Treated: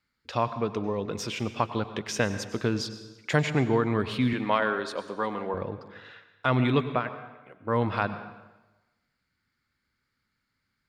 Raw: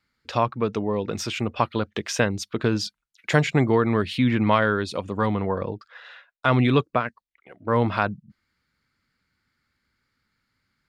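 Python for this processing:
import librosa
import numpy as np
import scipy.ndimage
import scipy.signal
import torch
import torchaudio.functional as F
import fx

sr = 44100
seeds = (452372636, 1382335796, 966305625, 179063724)

y = fx.highpass(x, sr, hz=300.0, slope=12, at=(4.33, 5.54))
y = fx.rev_plate(y, sr, seeds[0], rt60_s=1.1, hf_ratio=0.85, predelay_ms=85, drr_db=11.0)
y = y * librosa.db_to_amplitude(-4.5)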